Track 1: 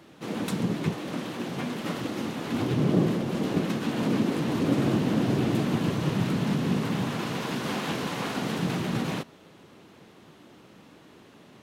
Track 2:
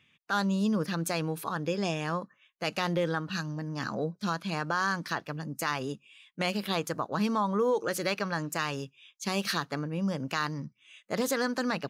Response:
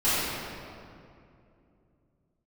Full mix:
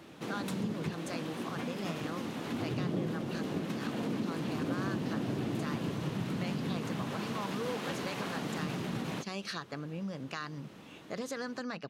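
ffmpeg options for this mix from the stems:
-filter_complex "[0:a]volume=0dB[a];[1:a]lowpass=7.8k,bandreject=f=900:w=12,volume=-3.5dB[b];[a][b]amix=inputs=2:normalize=0,acompressor=threshold=-39dB:ratio=2"

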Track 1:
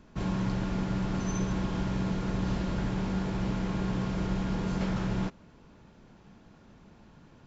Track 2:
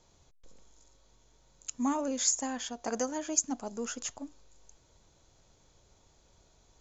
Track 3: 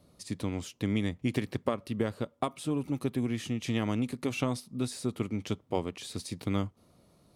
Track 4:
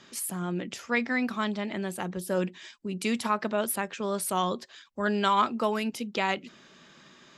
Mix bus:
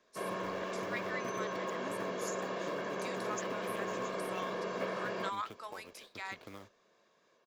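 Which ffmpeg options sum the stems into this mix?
-filter_complex "[0:a]acrossover=split=2600[a][b];[b]acompressor=threshold=-58dB:ratio=4:attack=1:release=60[c];[a][c]amix=inputs=2:normalize=0,highpass=f=290:w=0.5412,highpass=f=290:w=1.3066,aecho=1:1:1.8:0.7,volume=0dB[d];[1:a]volume=-18dB[e];[2:a]acrossover=split=380 3800:gain=0.251 1 0.0794[f][g][h];[f][g][h]amix=inputs=3:normalize=0,acompressor=threshold=-38dB:ratio=6,acrusher=bits=3:mode=log:mix=0:aa=0.000001,volume=-8dB[i];[3:a]deesser=0.75,highpass=1.3k,equalizer=f=2.9k:w=5.1:g=-14.5,volume=-9dB[j];[d][e][i][j]amix=inputs=4:normalize=0,agate=range=-11dB:threshold=-53dB:ratio=16:detection=peak"

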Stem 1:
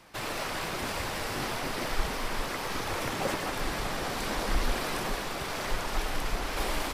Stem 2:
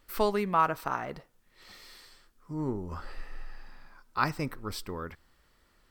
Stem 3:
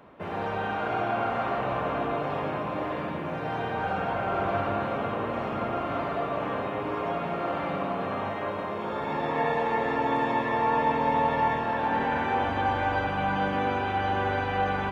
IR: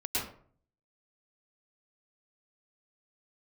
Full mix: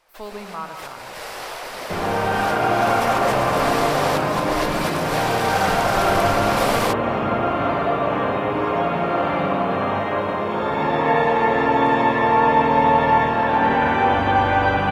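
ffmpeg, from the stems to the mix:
-filter_complex "[0:a]lowshelf=f=360:t=q:w=1.5:g=-12.5,volume=-1.5dB,afade=t=in:st=2.32:d=0.32:silence=0.421697,asplit=2[a][b];[b]volume=-15.5dB[c];[1:a]volume=-17.5dB,asplit=3[d][e][f];[e]volume=-11dB[g];[2:a]adelay=1700,volume=0dB[h];[f]apad=whole_len=305812[i];[a][i]sidechaincompress=threshold=-59dB:ratio=8:attack=27:release=111[j];[3:a]atrim=start_sample=2205[k];[c][g]amix=inputs=2:normalize=0[l];[l][k]afir=irnorm=-1:irlink=0[m];[j][d][h][m]amix=inputs=4:normalize=0,dynaudnorm=f=130:g=3:m=9dB"

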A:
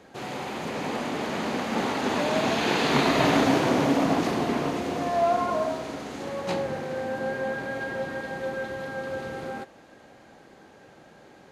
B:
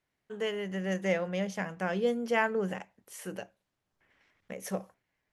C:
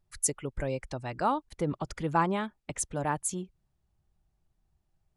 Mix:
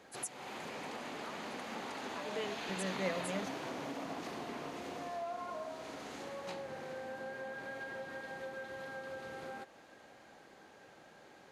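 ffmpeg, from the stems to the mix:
-filter_complex "[0:a]volume=-4dB[a];[1:a]adelay=1950,volume=-8dB[b];[2:a]highpass=1.3k,highshelf=f=6.8k:g=8.5,volume=-7dB,asplit=2[c][d];[d]apad=whole_len=320873[e];[b][e]sidechaingate=range=-33dB:threshold=-56dB:ratio=16:detection=peak[f];[a][c]amix=inputs=2:normalize=0,lowshelf=f=420:g=-8,acompressor=threshold=-43dB:ratio=3,volume=0dB[g];[f][g]amix=inputs=2:normalize=0"

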